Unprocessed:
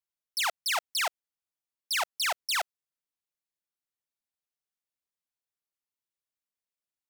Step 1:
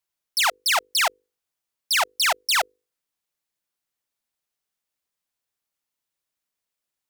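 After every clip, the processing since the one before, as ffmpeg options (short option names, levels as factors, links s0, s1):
-af "bandreject=f=50:t=h:w=6,bandreject=f=100:t=h:w=6,bandreject=f=150:t=h:w=6,bandreject=f=200:t=h:w=6,bandreject=f=250:t=h:w=6,bandreject=f=300:t=h:w=6,bandreject=f=350:t=h:w=6,bandreject=f=400:t=h:w=6,bandreject=f=450:t=h:w=6,bandreject=f=500:t=h:w=6,volume=2.51"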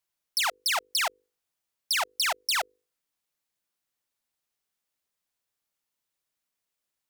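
-af "acompressor=threshold=0.0562:ratio=4"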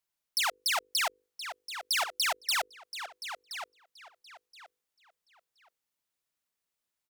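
-filter_complex "[0:a]asplit=2[s0][s1];[s1]adelay=1023,lowpass=f=4600:p=1,volume=0.355,asplit=2[s2][s3];[s3]adelay=1023,lowpass=f=4600:p=1,volume=0.25,asplit=2[s4][s5];[s5]adelay=1023,lowpass=f=4600:p=1,volume=0.25[s6];[s0][s2][s4][s6]amix=inputs=4:normalize=0,volume=0.75"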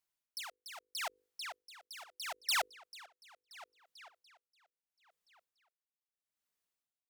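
-af "aeval=exprs='val(0)*pow(10,-19*(0.5-0.5*cos(2*PI*0.76*n/s))/20)':c=same,volume=0.794"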